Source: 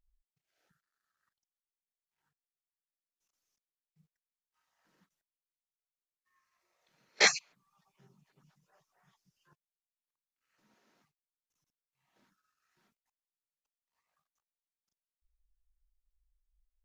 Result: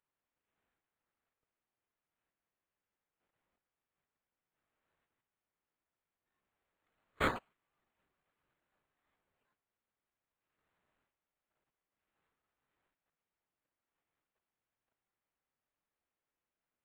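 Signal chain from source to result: differentiator; decimation joined by straight lines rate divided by 8×

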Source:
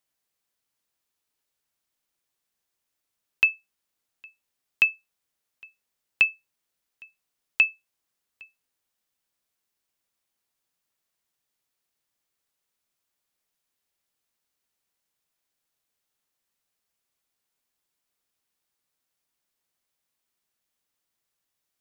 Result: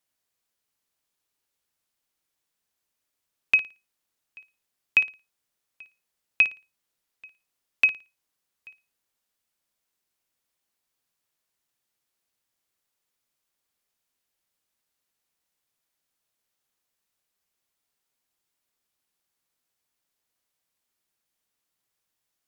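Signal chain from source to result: flutter echo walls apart 9.4 m, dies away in 0.27 s; tape speed -3%

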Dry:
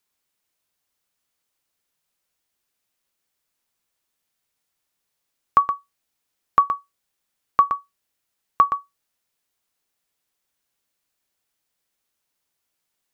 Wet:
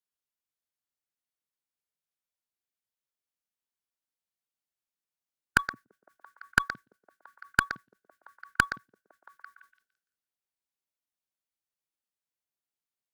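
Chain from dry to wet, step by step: repeats whose band climbs or falls 169 ms, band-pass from 160 Hz, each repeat 0.7 oct, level -4.5 dB; formant shift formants +5 st; Chebyshev shaper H 2 -14 dB, 5 -22 dB, 7 -16 dB, 8 -36 dB, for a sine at 1.5 dBFS; trim -6 dB

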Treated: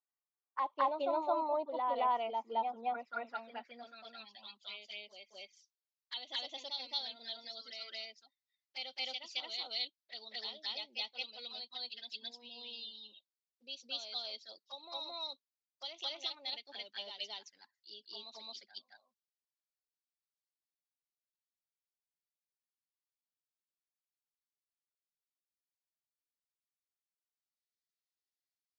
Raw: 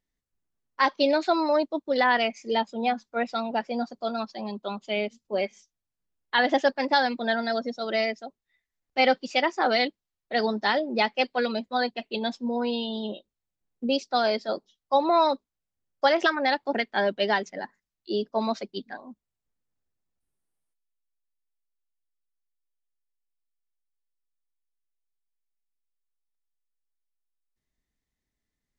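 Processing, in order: touch-sensitive flanger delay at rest 2.6 ms, full sweep at -23 dBFS; reverse echo 219 ms -3.5 dB; band-pass sweep 1 kHz -> 4.6 kHz, 2.86–4.87 s; trim -2 dB

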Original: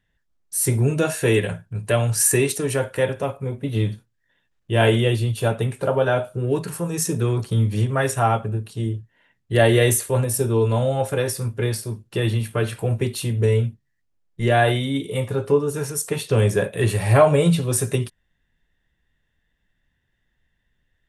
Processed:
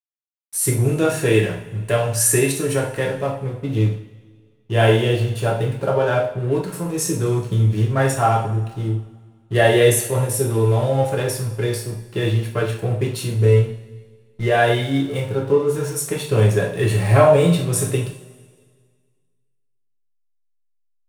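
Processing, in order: hysteresis with a dead band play -34 dBFS; two-slope reverb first 0.47 s, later 1.8 s, from -17 dB, DRR 0 dB; trim -1 dB

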